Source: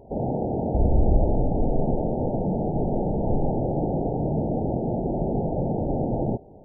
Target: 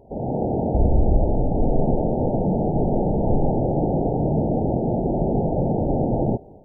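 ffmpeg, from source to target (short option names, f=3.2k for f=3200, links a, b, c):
-af "dynaudnorm=f=210:g=3:m=6dB,volume=-2dB"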